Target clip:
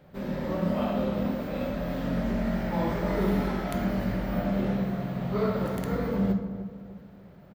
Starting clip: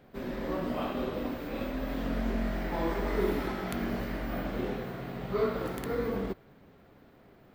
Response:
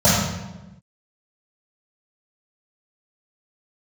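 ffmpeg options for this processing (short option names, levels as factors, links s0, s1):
-filter_complex "[0:a]asplit=2[s0][s1];[s1]adelay=301,lowpass=f=1000:p=1,volume=0.316,asplit=2[s2][s3];[s3]adelay=301,lowpass=f=1000:p=1,volume=0.41,asplit=2[s4][s5];[s5]adelay=301,lowpass=f=1000:p=1,volume=0.41,asplit=2[s6][s7];[s7]adelay=301,lowpass=f=1000:p=1,volume=0.41[s8];[s0][s2][s4][s6][s8]amix=inputs=5:normalize=0,asplit=2[s9][s10];[1:a]atrim=start_sample=2205,atrim=end_sample=6615[s11];[s10][s11]afir=irnorm=-1:irlink=0,volume=0.0473[s12];[s9][s12]amix=inputs=2:normalize=0"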